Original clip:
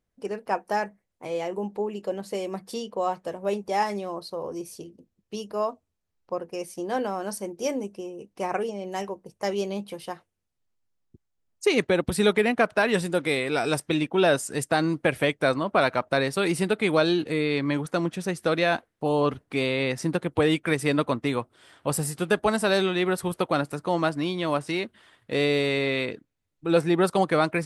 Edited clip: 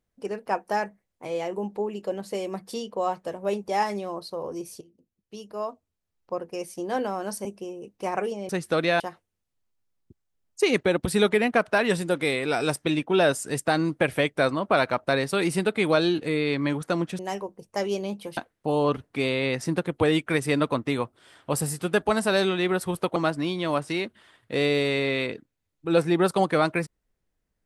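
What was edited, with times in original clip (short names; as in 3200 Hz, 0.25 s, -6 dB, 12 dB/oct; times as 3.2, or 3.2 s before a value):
4.81–6.42 fade in, from -14.5 dB
7.45–7.82 cut
8.86–10.04 swap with 18.23–18.74
23.53–23.95 cut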